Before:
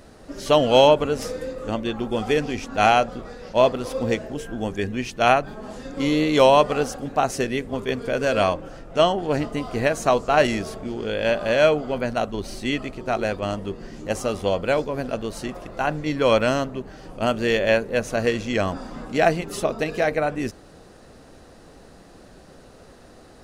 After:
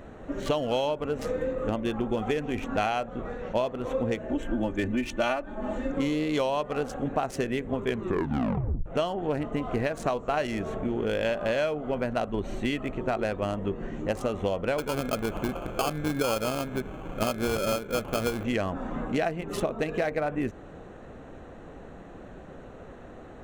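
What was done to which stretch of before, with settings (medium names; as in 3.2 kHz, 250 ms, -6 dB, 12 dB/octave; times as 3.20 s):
4.28–5.92 s: comb 3.4 ms, depth 81%
7.87 s: tape stop 0.99 s
14.78–18.45 s: sample-rate reducer 1.9 kHz
whole clip: local Wiener filter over 9 samples; compression 10:1, threshold -27 dBFS; trim +3 dB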